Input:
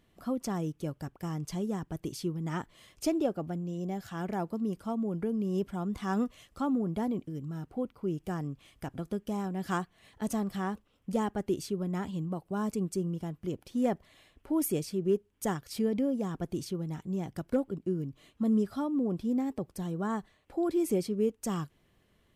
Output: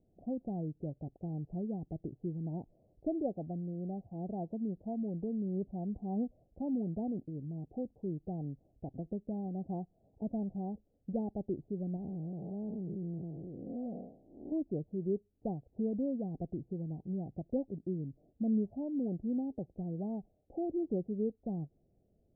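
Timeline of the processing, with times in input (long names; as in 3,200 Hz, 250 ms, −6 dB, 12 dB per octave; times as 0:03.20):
0:11.96–0:14.52: spectrum smeared in time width 292 ms
whole clip: dynamic equaliser 400 Hz, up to −4 dB, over −39 dBFS, Q 1.3; Butterworth low-pass 760 Hz 72 dB per octave; level −3 dB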